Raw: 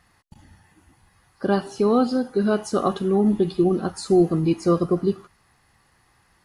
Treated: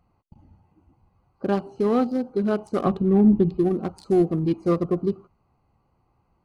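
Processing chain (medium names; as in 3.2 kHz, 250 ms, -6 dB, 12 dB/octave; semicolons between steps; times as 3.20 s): local Wiener filter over 25 samples; 2.84–3.58 s: tone controls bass +9 dB, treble -7 dB; trim -2 dB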